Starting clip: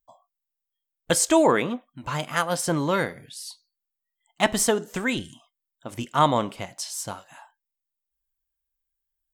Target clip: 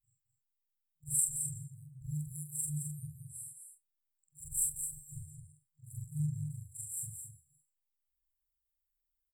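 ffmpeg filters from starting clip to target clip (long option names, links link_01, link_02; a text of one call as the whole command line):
ffmpeg -i in.wav -af "afftfilt=real='re':imag='-im':win_size=4096:overlap=0.75,afftfilt=real='re*(1-between(b*sr/4096,160,7300))':imag='im*(1-between(b*sr/4096,160,7300))':win_size=4096:overlap=0.75,aecho=1:1:216:0.447" out.wav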